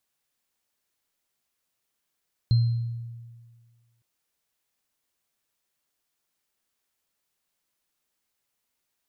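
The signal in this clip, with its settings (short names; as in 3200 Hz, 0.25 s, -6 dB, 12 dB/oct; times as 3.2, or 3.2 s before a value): sine partials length 1.51 s, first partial 117 Hz, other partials 4160 Hz, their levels -19 dB, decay 1.68 s, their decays 0.66 s, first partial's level -15 dB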